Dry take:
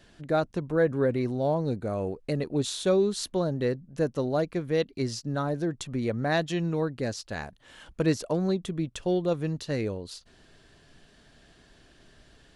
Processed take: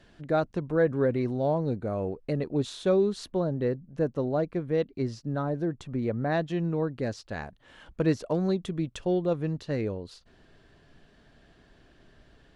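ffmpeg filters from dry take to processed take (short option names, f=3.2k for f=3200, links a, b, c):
-af "asetnsamples=n=441:p=0,asendcmd='1.58 lowpass f 2100;3.27 lowpass f 1300;6.91 lowpass f 2400;8.32 lowpass f 5100;9.05 lowpass f 2100',lowpass=f=3.3k:p=1"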